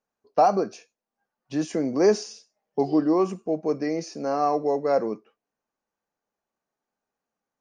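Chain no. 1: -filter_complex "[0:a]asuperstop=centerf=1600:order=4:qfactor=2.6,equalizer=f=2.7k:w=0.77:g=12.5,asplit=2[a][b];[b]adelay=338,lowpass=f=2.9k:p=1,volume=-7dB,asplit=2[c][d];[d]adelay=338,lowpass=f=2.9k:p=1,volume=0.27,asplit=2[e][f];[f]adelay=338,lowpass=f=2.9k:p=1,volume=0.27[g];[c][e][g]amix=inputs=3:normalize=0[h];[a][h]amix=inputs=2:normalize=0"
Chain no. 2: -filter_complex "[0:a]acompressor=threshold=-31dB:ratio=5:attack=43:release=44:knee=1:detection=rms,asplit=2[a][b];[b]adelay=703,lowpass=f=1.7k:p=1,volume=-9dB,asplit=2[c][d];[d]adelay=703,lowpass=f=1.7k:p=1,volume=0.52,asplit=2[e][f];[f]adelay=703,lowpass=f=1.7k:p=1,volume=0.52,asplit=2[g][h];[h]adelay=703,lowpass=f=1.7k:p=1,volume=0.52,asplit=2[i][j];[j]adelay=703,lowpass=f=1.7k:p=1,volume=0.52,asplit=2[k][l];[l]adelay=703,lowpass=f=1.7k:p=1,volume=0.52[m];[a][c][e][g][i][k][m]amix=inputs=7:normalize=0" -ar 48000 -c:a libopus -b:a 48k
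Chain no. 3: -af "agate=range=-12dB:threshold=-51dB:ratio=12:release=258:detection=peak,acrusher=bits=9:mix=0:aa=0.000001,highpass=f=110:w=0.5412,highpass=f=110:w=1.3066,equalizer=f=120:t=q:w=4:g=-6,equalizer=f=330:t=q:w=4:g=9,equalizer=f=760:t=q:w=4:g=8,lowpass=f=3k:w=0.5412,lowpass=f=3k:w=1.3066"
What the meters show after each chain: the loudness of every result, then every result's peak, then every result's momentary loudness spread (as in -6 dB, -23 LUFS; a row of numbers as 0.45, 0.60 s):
-23.5, -33.0, -20.0 LUFS; -7.0, -15.0, -2.5 dBFS; 13, 16, 12 LU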